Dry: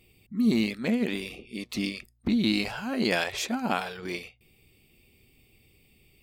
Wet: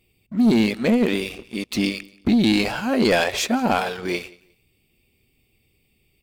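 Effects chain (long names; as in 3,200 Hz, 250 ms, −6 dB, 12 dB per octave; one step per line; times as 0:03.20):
dynamic equaliser 520 Hz, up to +5 dB, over −39 dBFS, Q 1.1
leveller curve on the samples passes 2
repeating echo 178 ms, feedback 23%, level −23 dB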